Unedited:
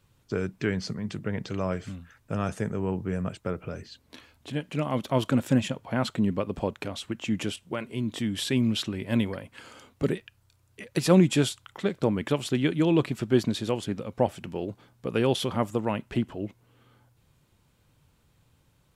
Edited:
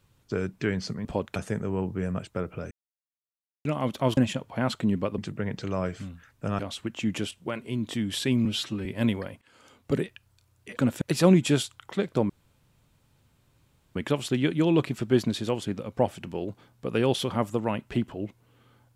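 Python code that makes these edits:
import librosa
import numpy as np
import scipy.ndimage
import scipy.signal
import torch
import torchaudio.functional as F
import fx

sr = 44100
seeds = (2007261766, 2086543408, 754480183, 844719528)

y = fx.edit(x, sr, fx.swap(start_s=1.05, length_s=1.41, other_s=6.53, other_length_s=0.31),
    fx.silence(start_s=3.81, length_s=0.94),
    fx.move(start_s=5.27, length_s=0.25, to_s=10.88),
    fx.stretch_span(start_s=8.7, length_s=0.27, factor=1.5),
    fx.fade_in_from(start_s=9.53, length_s=0.51, floor_db=-23.0),
    fx.insert_room_tone(at_s=12.16, length_s=1.66), tone=tone)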